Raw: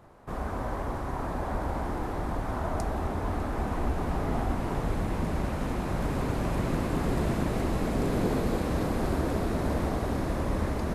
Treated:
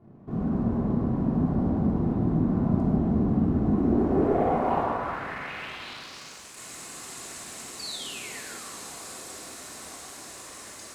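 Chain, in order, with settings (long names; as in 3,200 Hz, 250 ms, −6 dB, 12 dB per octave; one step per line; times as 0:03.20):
0:04.80–0:06.57: hard clipping −34.5 dBFS, distortion −12 dB
0:07.79–0:09.50: sound drawn into the spectrogram fall 280–4,700 Hz −39 dBFS
band-pass filter sweep 200 Hz → 7,700 Hz, 0:03.61–0:06.45
leveller curve on the samples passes 1
convolution reverb RT60 1.5 s, pre-delay 3 ms, DRR −4.5 dB
level +5.5 dB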